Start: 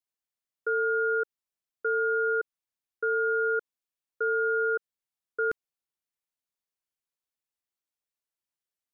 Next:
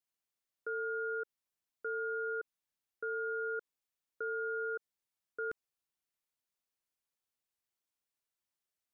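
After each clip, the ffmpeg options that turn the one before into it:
-af "alimiter=level_in=2.24:limit=0.0631:level=0:latency=1:release=47,volume=0.447"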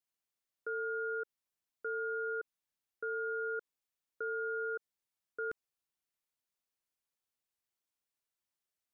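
-af anull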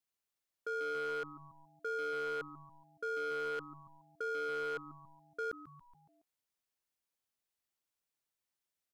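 -filter_complex "[0:a]asplit=6[s0][s1][s2][s3][s4][s5];[s1]adelay=140,afreqshift=-150,volume=0.188[s6];[s2]adelay=280,afreqshift=-300,volume=0.104[s7];[s3]adelay=420,afreqshift=-450,volume=0.0569[s8];[s4]adelay=560,afreqshift=-600,volume=0.0313[s9];[s5]adelay=700,afreqshift=-750,volume=0.0172[s10];[s0][s6][s7][s8][s9][s10]amix=inputs=6:normalize=0,aeval=exprs='0.0251*(abs(mod(val(0)/0.0251+3,4)-2)-1)':c=same"

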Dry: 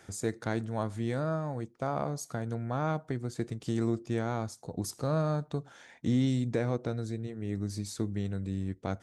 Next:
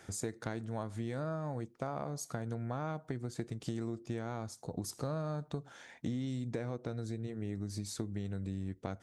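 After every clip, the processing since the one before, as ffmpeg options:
-af "acompressor=threshold=0.02:ratio=6"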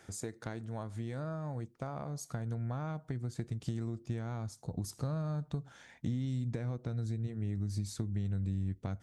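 -af "asubboost=boost=3:cutoff=200,volume=0.75"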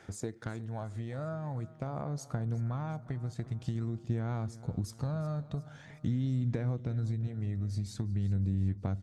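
-filter_complex "[0:a]asplit=2[s0][s1];[s1]adynamicsmooth=sensitivity=6.5:basefreq=7000,volume=1.06[s2];[s0][s2]amix=inputs=2:normalize=0,aphaser=in_gain=1:out_gain=1:delay=1.6:decay=0.32:speed=0.46:type=sinusoidal,aecho=1:1:361|722|1083|1444|1805:0.126|0.0705|0.0395|0.0221|0.0124,volume=0.531"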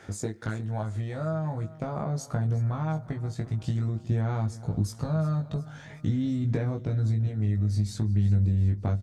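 -filter_complex "[0:a]asplit=2[s0][s1];[s1]adelay=19,volume=0.668[s2];[s0][s2]amix=inputs=2:normalize=0,volume=1.68"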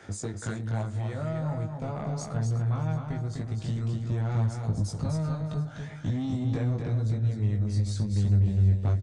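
-filter_complex "[0:a]acrossover=split=110|2300[s0][s1][s2];[s1]asoftclip=type=tanh:threshold=0.0422[s3];[s0][s3][s2]amix=inputs=3:normalize=0,aecho=1:1:250:0.562,aresample=22050,aresample=44100"

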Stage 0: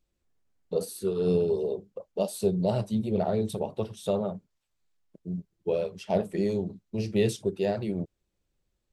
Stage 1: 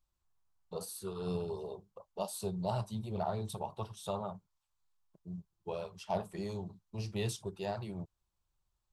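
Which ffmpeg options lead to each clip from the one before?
-af "equalizer=f=250:t=o:w=1:g=-11,equalizer=f=500:t=o:w=1:g=-10,equalizer=f=1000:t=o:w=1:g=10,equalizer=f=2000:t=o:w=1:g=-7,volume=0.668"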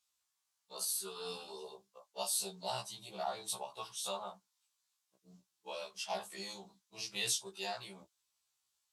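-af "bandpass=f=6700:t=q:w=0.51:csg=0,afftfilt=real='re*1.73*eq(mod(b,3),0)':imag='im*1.73*eq(mod(b,3),0)':win_size=2048:overlap=0.75,volume=4.47"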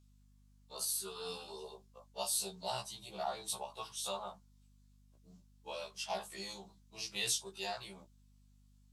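-af "aeval=exprs='val(0)+0.000631*(sin(2*PI*50*n/s)+sin(2*PI*2*50*n/s)/2+sin(2*PI*3*50*n/s)/3+sin(2*PI*4*50*n/s)/4+sin(2*PI*5*50*n/s)/5)':c=same"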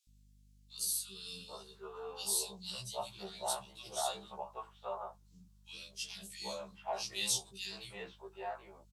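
-filter_complex "[0:a]acrossover=split=290|2000[s0][s1][s2];[s0]adelay=70[s3];[s1]adelay=780[s4];[s3][s4][s2]amix=inputs=3:normalize=0,volume=1.19"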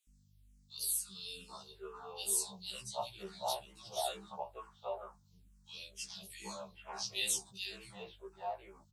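-filter_complex "[0:a]asplit=2[s0][s1];[s1]afreqshift=-2.2[s2];[s0][s2]amix=inputs=2:normalize=1,volume=1.26"

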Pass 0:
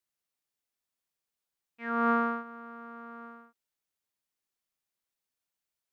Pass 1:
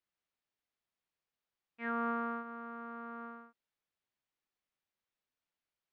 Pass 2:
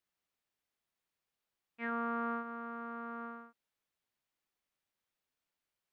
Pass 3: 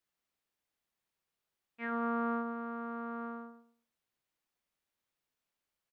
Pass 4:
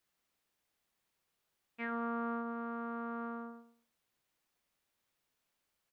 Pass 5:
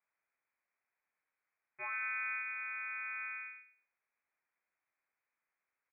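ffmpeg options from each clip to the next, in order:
-af "lowpass=3600,acompressor=threshold=0.0224:ratio=4"
-af "alimiter=level_in=1.78:limit=0.0631:level=0:latency=1,volume=0.562,volume=1.26"
-filter_complex "[0:a]asplit=2[s0][s1];[s1]adelay=107,lowpass=f=930:p=1,volume=0.562,asplit=2[s2][s3];[s3]adelay=107,lowpass=f=930:p=1,volume=0.31,asplit=2[s4][s5];[s5]adelay=107,lowpass=f=930:p=1,volume=0.31,asplit=2[s6][s7];[s7]adelay=107,lowpass=f=930:p=1,volume=0.31[s8];[s0][s2][s4][s6][s8]amix=inputs=5:normalize=0"
-af "acompressor=threshold=0.00501:ratio=2,volume=1.78"
-filter_complex "[0:a]acrossover=split=180 2000:gain=0.251 1 0.224[s0][s1][s2];[s0][s1][s2]amix=inputs=3:normalize=0,lowpass=f=2300:t=q:w=0.5098,lowpass=f=2300:t=q:w=0.6013,lowpass=f=2300:t=q:w=0.9,lowpass=f=2300:t=q:w=2.563,afreqshift=-2700"

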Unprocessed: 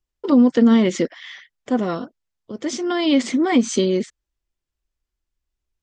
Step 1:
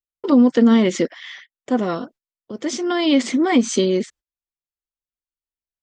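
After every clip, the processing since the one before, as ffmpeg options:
-af "agate=range=0.126:threshold=0.00631:ratio=16:detection=peak,lowshelf=f=88:g=-9.5,volume=1.19"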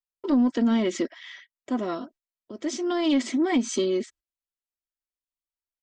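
-af "aecho=1:1:3.1:0.51,asoftclip=type=tanh:threshold=0.501,volume=0.422"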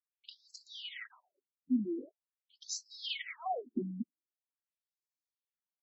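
-af "afftfilt=real='re*between(b*sr/1024,210*pow(5700/210,0.5+0.5*sin(2*PI*0.44*pts/sr))/1.41,210*pow(5700/210,0.5+0.5*sin(2*PI*0.44*pts/sr))*1.41)':imag='im*between(b*sr/1024,210*pow(5700/210,0.5+0.5*sin(2*PI*0.44*pts/sr))/1.41,210*pow(5700/210,0.5+0.5*sin(2*PI*0.44*pts/sr))*1.41)':win_size=1024:overlap=0.75,volume=0.794"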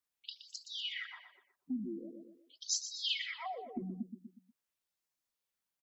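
-filter_complex "[0:a]asplit=2[s0][s1];[s1]aecho=0:1:121|242|363|484:0.299|0.11|0.0409|0.0151[s2];[s0][s2]amix=inputs=2:normalize=0,acrossover=split=130|3000[s3][s4][s5];[s4]acompressor=threshold=0.00447:ratio=4[s6];[s3][s6][s5]amix=inputs=3:normalize=0,volume=1.88"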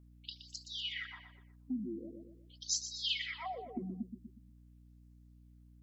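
-af "aeval=exprs='val(0)+0.00126*(sin(2*PI*60*n/s)+sin(2*PI*2*60*n/s)/2+sin(2*PI*3*60*n/s)/3+sin(2*PI*4*60*n/s)/4+sin(2*PI*5*60*n/s)/5)':c=same"

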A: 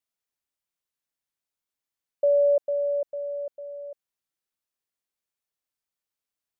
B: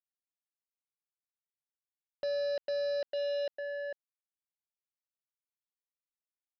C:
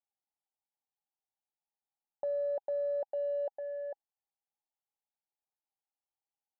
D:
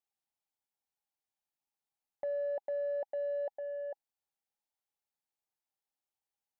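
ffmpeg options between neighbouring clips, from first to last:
-af "alimiter=level_in=1.41:limit=0.0631:level=0:latency=1:release=160,volume=0.708,aresample=11025,acrusher=bits=5:mix=0:aa=0.5,aresample=44100,volume=0.891"
-af "lowpass=f=820:t=q:w=9.1,volume=0.501"
-af "asoftclip=type=tanh:threshold=0.0355"

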